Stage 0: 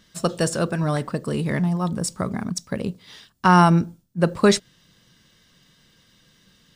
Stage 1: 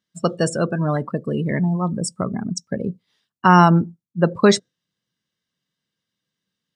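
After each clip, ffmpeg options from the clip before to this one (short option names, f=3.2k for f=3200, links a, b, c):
-af "afftdn=nr=26:nf=-29,highpass=110,volume=2.5dB"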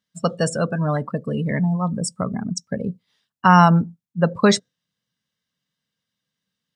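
-af "equalizer=f=350:t=o:w=0.24:g=-13"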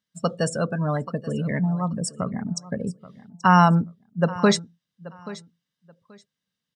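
-af "aecho=1:1:831|1662:0.126|0.0264,volume=-3dB"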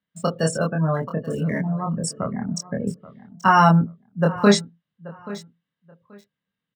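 -filter_complex "[0:a]acrossover=split=270|1200|3300[a][b][c][d];[d]aeval=exprs='val(0)*gte(abs(val(0)),0.00299)':c=same[e];[a][b][c][e]amix=inputs=4:normalize=0,asplit=2[f][g];[g]adelay=25,volume=-2dB[h];[f][h]amix=inputs=2:normalize=0"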